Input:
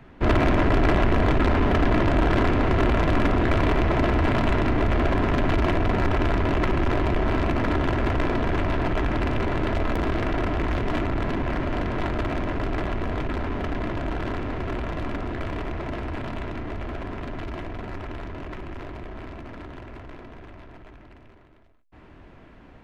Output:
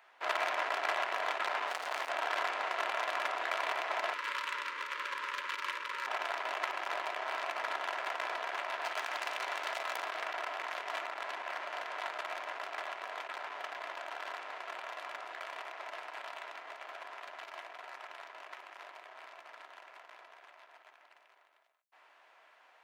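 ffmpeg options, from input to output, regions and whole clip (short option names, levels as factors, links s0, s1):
-filter_complex "[0:a]asettb=1/sr,asplit=3[s0][s1][s2];[s0]atrim=end=1.674[s3];[s1]atrim=start=1.67:end=2.09,asetpts=PTS-STARTPTS,afade=t=in:d=0.004:c=qsin,afade=t=out:st=0.416:d=0.004:c=qsin,equalizer=f=84:t=o:w=0.63:g=15,asoftclip=type=hard:threshold=0.126[s4];[s2]atrim=start=2.086[s5];[s3][s4]acrossfade=d=0.004:c1=hsin:c2=qsin[s6];[s6][s5]acrossfade=d=0.004:c1=qsin:c2=hsin,asettb=1/sr,asplit=3[s7][s8][s9];[s7]atrim=end=4.144[s10];[s8]atrim=start=4.14:end=6.07,asetpts=PTS-STARTPTS,afade=t=in:d=0.004:c=qsin,afade=t=out:st=1.926:d=0.004:c=qsin,asuperstop=centerf=730:order=12:qfactor=2.3,equalizer=f=390:t=o:w=2.3:g=-5.5[s11];[s9]atrim=start=6.066[s12];[s10][s11]acrossfade=d=0.004:c1=hsin:c2=qsin[s13];[s13][s12]acrossfade=d=0.004:c1=qsin:c2=hsin,asettb=1/sr,asplit=3[s14][s15][s16];[s14]atrim=end=8.834[s17];[s15]atrim=start=8.83:end=10.02,asetpts=PTS-STARTPTS,afade=t=in:d=0.004:c=qsin,afade=t=out:st=1.186:d=0.004:c=qsin,highpass=f=41:w=0.5412,highpass=f=41:w=1.3066,highshelf=f=2300:g=5,asoftclip=type=hard:threshold=0.126[s18];[s16]atrim=start=10.016[s19];[s17][s18]acrossfade=d=0.004:c1=hsin:c2=qsin[s20];[s20][s19]acrossfade=d=0.004:c1=qsin:c2=hsin,highpass=f=690:w=0.5412,highpass=f=690:w=1.3066,highshelf=f=4900:g=7,volume=0.473"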